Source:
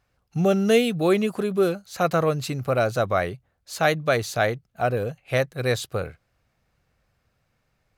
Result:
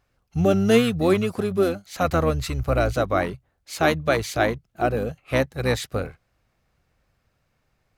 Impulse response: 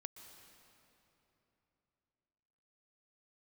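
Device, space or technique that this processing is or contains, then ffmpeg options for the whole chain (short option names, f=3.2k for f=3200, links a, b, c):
octave pedal: -filter_complex "[0:a]asplit=2[a][b];[b]asetrate=22050,aresample=44100,atempo=2,volume=-7dB[c];[a][c]amix=inputs=2:normalize=0,asplit=3[d][e][f];[d]afade=t=out:st=2.03:d=0.02[g];[e]asubboost=boost=7.5:cutoff=76,afade=t=in:st=2.03:d=0.02,afade=t=out:st=2.92:d=0.02[h];[f]afade=t=in:st=2.92:d=0.02[i];[g][h][i]amix=inputs=3:normalize=0"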